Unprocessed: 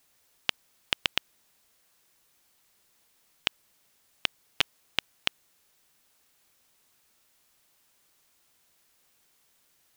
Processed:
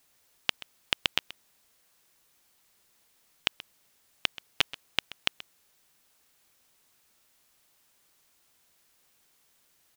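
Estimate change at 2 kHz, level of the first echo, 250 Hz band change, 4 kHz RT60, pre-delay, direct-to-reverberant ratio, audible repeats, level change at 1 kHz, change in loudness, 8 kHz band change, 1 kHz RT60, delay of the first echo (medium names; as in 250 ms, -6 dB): 0.0 dB, -17.5 dB, 0.0 dB, no reverb, no reverb, no reverb, 1, 0.0 dB, 0.0 dB, 0.0 dB, no reverb, 130 ms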